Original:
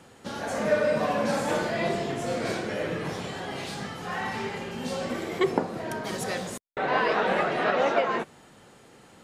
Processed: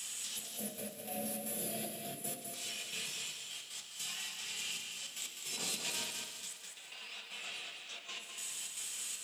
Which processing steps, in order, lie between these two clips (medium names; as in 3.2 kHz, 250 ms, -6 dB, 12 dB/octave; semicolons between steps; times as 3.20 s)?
high-pass 80 Hz; pre-emphasis filter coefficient 0.9; time-frequency box 0.37–2.42 s, 770–9900 Hz -23 dB; resonant high shelf 2.3 kHz +9 dB, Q 3; compressor with a negative ratio -45 dBFS, ratio -1; band noise 290–3900 Hz -60 dBFS; trance gate "xxxx..x.x..xxx." 154 bpm -12 dB; two-band feedback delay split 480 Hz, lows 87 ms, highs 332 ms, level -14 dB; reverberation RT60 1.0 s, pre-delay 3 ms, DRR 3.5 dB; bit-crushed delay 204 ms, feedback 35%, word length 11-bit, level -5 dB; trim +1.5 dB